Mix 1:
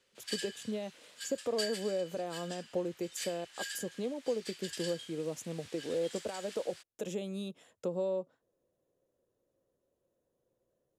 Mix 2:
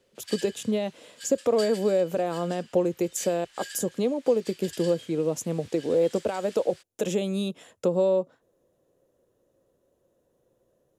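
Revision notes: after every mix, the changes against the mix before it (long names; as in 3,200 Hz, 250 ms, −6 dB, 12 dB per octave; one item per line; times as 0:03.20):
speech +11.0 dB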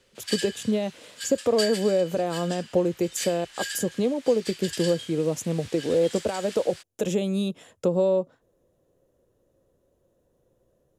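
background +8.0 dB
master: add low-shelf EQ 110 Hz +11 dB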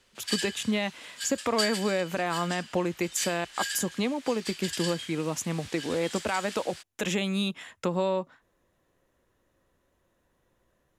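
speech: add octave-band graphic EQ 125/500/1,000/2,000/4,000 Hz −5/−10/+6/+11/+3 dB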